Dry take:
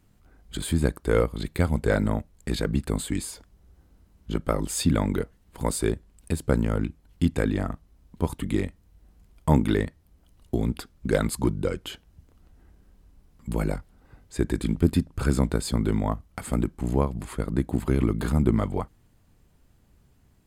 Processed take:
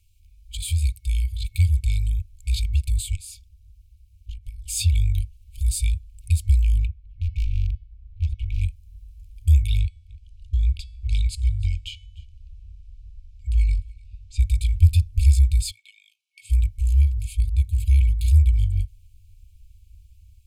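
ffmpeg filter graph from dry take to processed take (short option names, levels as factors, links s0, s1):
-filter_complex "[0:a]asettb=1/sr,asplit=3[s0][s1][s2];[s0]atrim=end=3.154[s3];[s1]atrim=start=3.15:end=4.68,asetpts=PTS-STARTPTS,afade=t=in:d=0.004:c=qsin,afade=t=out:st=1.526:d=0.004:c=qsin,acompressor=threshold=0.0224:ratio=12:attack=3.2:release=140:knee=1:detection=peak,aeval=exprs='val(0)*sin(2*PI*110*n/s)':c=same[s4];[s2]atrim=start=4.676[s5];[s3][s4]acrossfade=d=0.004:c1=hsin:c2=qsin[s6];[s6][s5]acrossfade=d=0.004:c1=qsin:c2=hsin,asettb=1/sr,asplit=3[s7][s8][s9];[s7]atrim=end=6.864[s10];[s8]atrim=start=6.86:end=8.61,asetpts=PTS-STARTPTS,afade=t=in:d=0.004:c=qsin,afade=t=out:st=1.746:d=0.004:c=qsin,lowpass=2100,volume=23.7,asoftclip=hard,volume=0.0422,bandreject=f=370.8:t=h:w=4,bandreject=f=741.6:t=h:w=4,bandreject=f=1112.4:t=h:w=4,bandreject=f=1483.2:t=h:w=4,bandreject=f=1854:t=h:w=4,bandreject=f=2224.8:t=h:w=4,bandreject=f=2595.6:t=h:w=4,bandreject=f=2966.4:t=h:w=4,bandreject=f=3337.2:t=h:w=4,bandreject=f=3708:t=h:w=4,bandreject=f=4078.8:t=h:w=4,bandreject=f=4449.6:t=h:w=4,bandreject=f=4820.4:t=h:w=4,bandreject=f=5191.2:t=h:w=4,bandreject=f=5562:t=h:w=4,bandreject=f=5932.8:t=h:w=4[s11];[s9]atrim=start=8.606[s12];[s10][s11]acrossfade=d=0.004:c1=hsin:c2=qsin[s13];[s13][s12]acrossfade=d=0.004:c1=qsin:c2=hsin,asettb=1/sr,asplit=3[s14][s15][s16];[s14]atrim=end=9.794[s17];[s15]atrim=start=9.79:end=14.4,asetpts=PTS-STARTPTS,afade=t=in:d=0.004:c=qsin,afade=t=out:st=4.606:d=0.004:c=qsin,lowpass=5900,bandreject=f=376.2:t=h:w=4,bandreject=f=752.4:t=h:w=4,bandreject=f=1128.6:t=h:w=4,bandreject=f=1504.8:t=h:w=4,bandreject=f=1881:t=h:w=4,bandreject=f=2257.2:t=h:w=4,bandreject=f=2633.4:t=h:w=4,bandreject=f=3009.6:t=h:w=4,bandreject=f=3385.8:t=h:w=4,bandreject=f=3762:t=h:w=4,bandreject=f=4138.2:t=h:w=4,bandreject=f=4514.4:t=h:w=4,bandreject=f=4890.6:t=h:w=4,bandreject=f=5266.8:t=h:w=4,bandreject=f=5643:t=h:w=4,bandreject=f=6019.2:t=h:w=4,bandreject=f=6395.4:t=h:w=4,bandreject=f=6771.6:t=h:w=4,bandreject=f=7147.8:t=h:w=4,bandreject=f=7524:t=h:w=4,bandreject=f=7900.2:t=h:w=4,bandreject=f=8276.4:t=h:w=4,bandreject=f=8652.6:t=h:w=4,bandreject=f=9028.8:t=h:w=4,bandreject=f=9405:t=h:w=4,bandreject=f=9781.2:t=h:w=4,bandreject=f=10157.4:t=h:w=4,bandreject=f=10533.6:t=h:w=4,bandreject=f=10909.8:t=h:w=4,bandreject=f=11286:t=h:w=4,aecho=1:1:300:0.0708,atrim=end_sample=203301[s18];[s16]atrim=start=14.396[s19];[s17][s18]acrossfade=d=0.004:c1=hsin:c2=qsin[s20];[s20][s19]acrossfade=d=0.004:c1=qsin:c2=hsin,asettb=1/sr,asplit=3[s21][s22][s23];[s21]atrim=end=15.714[s24];[s22]atrim=start=15.71:end=16.5,asetpts=PTS-STARTPTS,afade=t=in:d=0.004:c=qsin,afade=t=out:st=0.786:d=0.004:c=qsin,highpass=f=950:w=0.5412,highpass=f=950:w=1.3066,aemphasis=mode=reproduction:type=75fm[s25];[s23]atrim=start=16.496[s26];[s24][s25]acrossfade=d=0.004:c1=hsin:c2=qsin[s27];[s27][s26]acrossfade=d=0.004:c1=qsin:c2=hsin,afftfilt=real='re*(1-between(b*sr/4096,100,2200))':imag='im*(1-between(b*sr/4096,100,2200))':win_size=4096:overlap=0.75,asubboost=boost=3:cutoff=180,volume=1.33"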